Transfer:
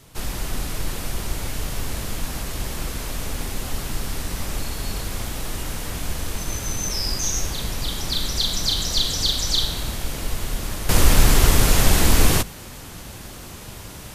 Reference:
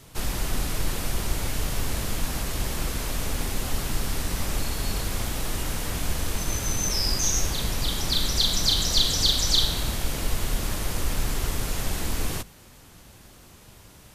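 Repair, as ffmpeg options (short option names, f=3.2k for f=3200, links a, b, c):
-af "asetnsamples=n=441:p=0,asendcmd='10.89 volume volume -12dB',volume=0dB"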